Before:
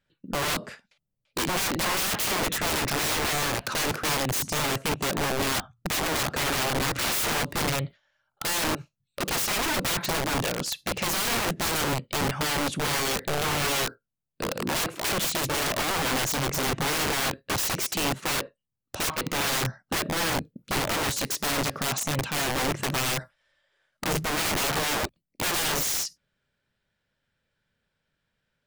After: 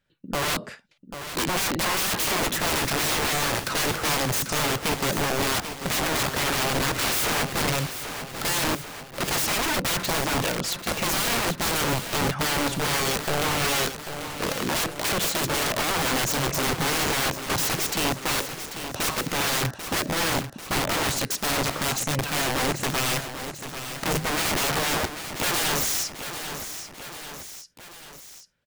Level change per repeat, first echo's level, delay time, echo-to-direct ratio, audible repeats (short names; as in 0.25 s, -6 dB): -4.5 dB, -10.0 dB, 0.791 s, -8.5 dB, 3